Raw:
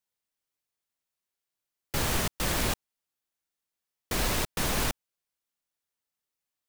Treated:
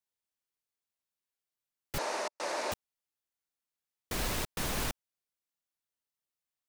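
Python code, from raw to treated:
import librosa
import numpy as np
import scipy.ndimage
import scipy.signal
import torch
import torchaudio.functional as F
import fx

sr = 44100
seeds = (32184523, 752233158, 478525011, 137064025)

y = fx.cabinet(x, sr, low_hz=340.0, low_slope=24, high_hz=8200.0, hz=(600.0, 910.0, 3200.0, 7600.0), db=(9, 7, -9, -6), at=(1.98, 2.72))
y = F.gain(torch.from_numpy(y), -5.5).numpy()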